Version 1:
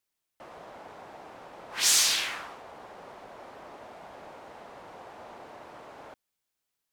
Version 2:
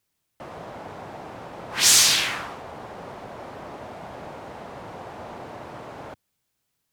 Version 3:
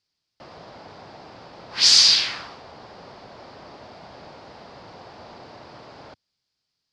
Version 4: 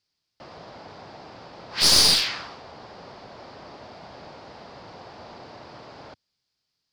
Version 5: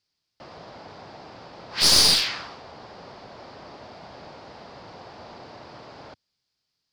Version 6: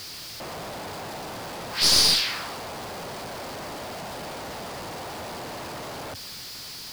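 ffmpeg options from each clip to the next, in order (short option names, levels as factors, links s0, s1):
-af "equalizer=f=110:w=0.57:g=10.5,volume=2.11"
-af "lowpass=f=4800:t=q:w=5.4,volume=0.531"
-af "aeval=exprs='clip(val(0),-1,0.1)':c=same"
-af anull
-af "aeval=exprs='val(0)+0.5*0.0316*sgn(val(0))':c=same,volume=0.75"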